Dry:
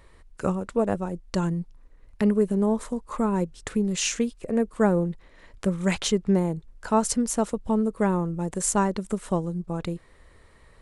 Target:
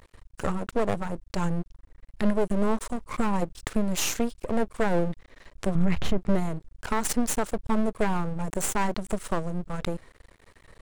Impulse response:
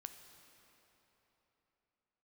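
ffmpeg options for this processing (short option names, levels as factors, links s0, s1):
-filter_complex "[0:a]aeval=exprs='max(val(0),0)':c=same,asettb=1/sr,asplit=3[s0][s1][s2];[s0]atrim=end=5.754[s3];[s1]atrim=start=5.75:end=6.18,asetpts=PTS-STARTPTS,afade=t=in:d=0.004:c=qsin,afade=t=out:st=0.426:d=0.004:c=qsin,bass=f=250:g=12,treble=f=4000:g=-15[s4];[s2]atrim=start=6.176[s5];[s3][s4]acrossfade=d=0.004:c1=hsin:c2=qsin[s6];[s6][s5]acrossfade=d=0.004:c1=qsin:c2=hsin,alimiter=limit=0.126:level=0:latency=1:release=73,volume=1.78"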